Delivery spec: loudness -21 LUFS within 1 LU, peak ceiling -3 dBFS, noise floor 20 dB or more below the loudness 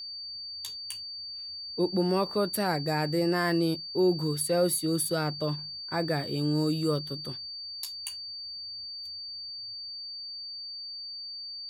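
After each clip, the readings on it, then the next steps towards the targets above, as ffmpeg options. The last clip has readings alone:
steady tone 4600 Hz; tone level -37 dBFS; loudness -30.5 LUFS; peak -14.5 dBFS; loudness target -21.0 LUFS
-> -af "bandreject=f=4.6k:w=30"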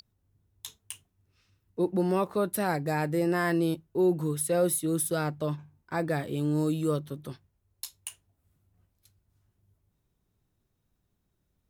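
steady tone none; loudness -28.5 LUFS; peak -15.0 dBFS; loudness target -21.0 LUFS
-> -af "volume=7.5dB"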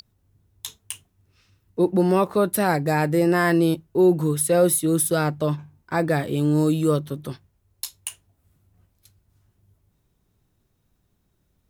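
loudness -21.5 LUFS; peak -7.5 dBFS; noise floor -70 dBFS

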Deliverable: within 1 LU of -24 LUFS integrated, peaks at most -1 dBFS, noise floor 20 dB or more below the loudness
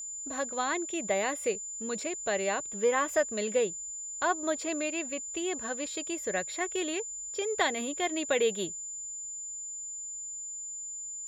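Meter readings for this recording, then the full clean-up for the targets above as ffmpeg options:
steady tone 7100 Hz; tone level -37 dBFS; loudness -31.5 LUFS; peak -13.5 dBFS; loudness target -24.0 LUFS
-> -af "bandreject=f=7.1k:w=30"
-af "volume=7.5dB"

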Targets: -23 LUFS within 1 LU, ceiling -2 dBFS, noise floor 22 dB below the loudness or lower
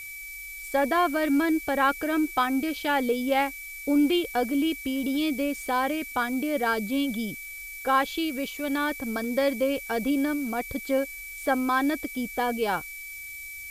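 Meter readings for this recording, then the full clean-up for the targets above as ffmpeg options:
steady tone 2300 Hz; tone level -38 dBFS; noise floor -40 dBFS; noise floor target -49 dBFS; loudness -26.5 LUFS; peak -11.0 dBFS; loudness target -23.0 LUFS
-> -af "bandreject=f=2.3k:w=30"
-af "afftdn=nr=9:nf=-40"
-af "volume=3.5dB"

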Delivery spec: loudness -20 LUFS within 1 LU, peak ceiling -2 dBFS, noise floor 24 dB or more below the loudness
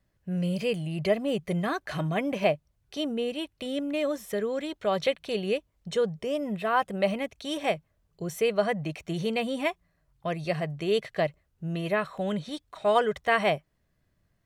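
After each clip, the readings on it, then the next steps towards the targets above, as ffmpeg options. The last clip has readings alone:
loudness -29.0 LUFS; peak -9.5 dBFS; loudness target -20.0 LUFS
-> -af "volume=9dB,alimiter=limit=-2dB:level=0:latency=1"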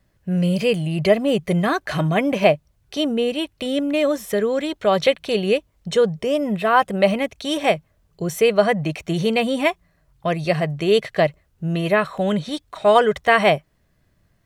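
loudness -20.5 LUFS; peak -2.0 dBFS; noise floor -64 dBFS

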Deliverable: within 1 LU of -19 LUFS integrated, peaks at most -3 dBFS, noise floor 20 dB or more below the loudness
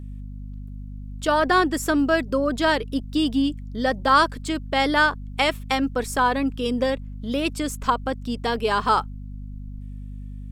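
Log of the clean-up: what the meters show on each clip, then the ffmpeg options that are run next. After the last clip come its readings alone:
hum 50 Hz; harmonics up to 250 Hz; hum level -32 dBFS; loudness -22.5 LUFS; peak -5.5 dBFS; loudness target -19.0 LUFS
-> -af "bandreject=f=50:t=h:w=6,bandreject=f=100:t=h:w=6,bandreject=f=150:t=h:w=6,bandreject=f=200:t=h:w=6,bandreject=f=250:t=h:w=6"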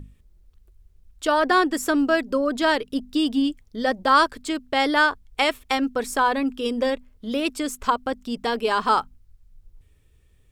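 hum none; loudness -23.0 LUFS; peak -5.5 dBFS; loudness target -19.0 LUFS
-> -af "volume=4dB,alimiter=limit=-3dB:level=0:latency=1"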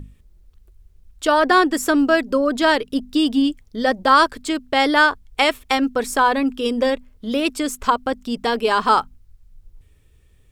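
loudness -19.0 LUFS; peak -3.0 dBFS; noise floor -54 dBFS

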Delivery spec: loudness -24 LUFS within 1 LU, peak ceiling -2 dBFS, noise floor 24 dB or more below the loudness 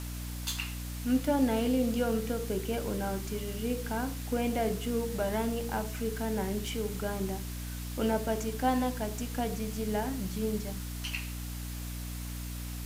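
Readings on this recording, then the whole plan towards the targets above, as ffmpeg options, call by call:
hum 60 Hz; harmonics up to 300 Hz; hum level -36 dBFS; noise floor -38 dBFS; noise floor target -57 dBFS; loudness -33.0 LUFS; peak -16.5 dBFS; loudness target -24.0 LUFS
-> -af "bandreject=f=60:t=h:w=4,bandreject=f=120:t=h:w=4,bandreject=f=180:t=h:w=4,bandreject=f=240:t=h:w=4,bandreject=f=300:t=h:w=4"
-af "afftdn=nr=19:nf=-38"
-af "volume=9dB"

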